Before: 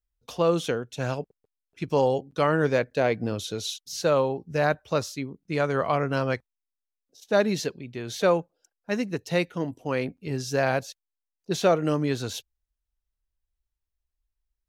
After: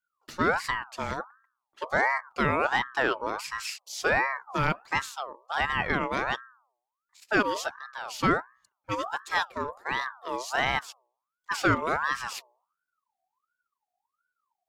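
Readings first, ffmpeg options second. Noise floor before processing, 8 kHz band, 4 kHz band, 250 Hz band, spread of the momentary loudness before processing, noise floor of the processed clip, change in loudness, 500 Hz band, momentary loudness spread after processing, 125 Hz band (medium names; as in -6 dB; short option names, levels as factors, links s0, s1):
under -85 dBFS, -3.0 dB, -0.5 dB, -5.5 dB, 10 LU, under -85 dBFS, -2.0 dB, -8.5 dB, 10 LU, -7.5 dB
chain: -af "bandreject=f=62.48:t=h:w=4,bandreject=f=124.96:t=h:w=4,bandreject=f=187.44:t=h:w=4,bandreject=f=249.92:t=h:w=4,bandreject=f=312.4:t=h:w=4,bandreject=f=374.88:t=h:w=4,aeval=exprs='val(0)*sin(2*PI*1100*n/s+1100*0.35/1.4*sin(2*PI*1.4*n/s))':c=same"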